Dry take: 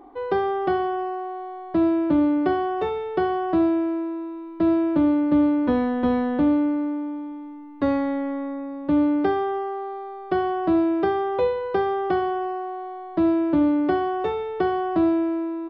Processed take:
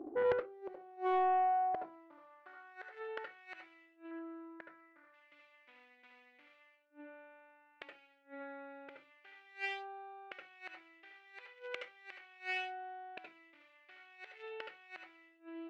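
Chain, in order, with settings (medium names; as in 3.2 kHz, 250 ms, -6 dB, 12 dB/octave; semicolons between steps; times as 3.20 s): local Wiener filter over 41 samples; in parallel at +1.5 dB: compression 12:1, threshold -29 dBFS, peak gain reduction 13 dB; 4.11–5.14 s: on the sum: resonant high shelf 2.1 kHz -11 dB, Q 3; inverted gate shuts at -18 dBFS, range -29 dB; band-pass sweep 330 Hz -> 2.4 kHz, 0.03–3.62 s; saturation -29 dBFS, distortion -17 dB; tilt shelf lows -9 dB, about 660 Hz; on a send at -3 dB: reverberation RT60 0.20 s, pre-delay 70 ms; on the sum: loudspeaker Doppler distortion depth 0.31 ms; trim +4 dB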